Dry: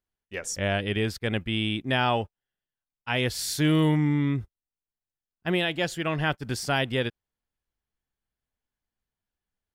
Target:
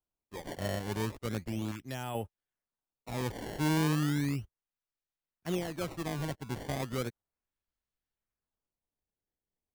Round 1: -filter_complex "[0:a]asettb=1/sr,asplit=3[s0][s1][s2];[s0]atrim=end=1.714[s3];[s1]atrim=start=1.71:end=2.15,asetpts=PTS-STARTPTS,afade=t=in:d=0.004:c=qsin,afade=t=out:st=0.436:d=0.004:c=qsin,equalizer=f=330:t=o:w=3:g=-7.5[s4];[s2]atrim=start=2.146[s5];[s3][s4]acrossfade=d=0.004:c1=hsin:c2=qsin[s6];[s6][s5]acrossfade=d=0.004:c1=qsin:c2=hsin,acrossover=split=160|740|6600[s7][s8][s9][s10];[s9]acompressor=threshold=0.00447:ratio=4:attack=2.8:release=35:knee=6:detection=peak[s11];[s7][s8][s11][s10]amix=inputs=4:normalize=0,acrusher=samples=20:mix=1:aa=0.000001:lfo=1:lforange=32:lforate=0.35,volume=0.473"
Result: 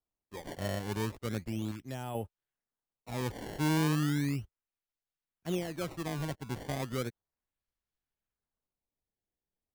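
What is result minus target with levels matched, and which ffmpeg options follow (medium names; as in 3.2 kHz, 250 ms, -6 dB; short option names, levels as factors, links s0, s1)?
compression: peak gain reduction +6 dB
-filter_complex "[0:a]asettb=1/sr,asplit=3[s0][s1][s2];[s0]atrim=end=1.714[s3];[s1]atrim=start=1.71:end=2.15,asetpts=PTS-STARTPTS,afade=t=in:d=0.004:c=qsin,afade=t=out:st=0.436:d=0.004:c=qsin,equalizer=f=330:t=o:w=3:g=-7.5[s4];[s2]atrim=start=2.146[s5];[s3][s4]acrossfade=d=0.004:c1=hsin:c2=qsin[s6];[s6][s5]acrossfade=d=0.004:c1=qsin:c2=hsin,acrossover=split=160|740|6600[s7][s8][s9][s10];[s9]acompressor=threshold=0.0112:ratio=4:attack=2.8:release=35:knee=6:detection=peak[s11];[s7][s8][s11][s10]amix=inputs=4:normalize=0,acrusher=samples=20:mix=1:aa=0.000001:lfo=1:lforange=32:lforate=0.35,volume=0.473"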